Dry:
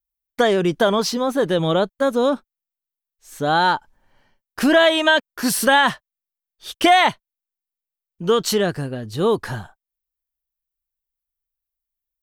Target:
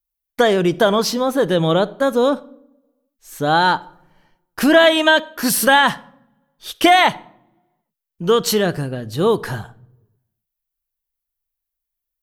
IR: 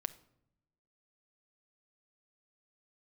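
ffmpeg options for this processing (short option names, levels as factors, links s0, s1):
-filter_complex "[0:a]equalizer=f=12000:t=o:w=0.23:g=6,asplit=2[s0][s1];[1:a]atrim=start_sample=2205[s2];[s1][s2]afir=irnorm=-1:irlink=0,volume=1.78[s3];[s0][s3]amix=inputs=2:normalize=0,volume=0.501"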